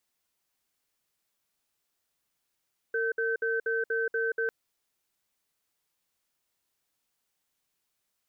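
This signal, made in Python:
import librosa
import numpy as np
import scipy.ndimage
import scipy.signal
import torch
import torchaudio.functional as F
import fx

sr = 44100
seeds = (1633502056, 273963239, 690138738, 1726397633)

y = fx.cadence(sr, length_s=1.55, low_hz=455.0, high_hz=1540.0, on_s=0.18, off_s=0.06, level_db=-28.5)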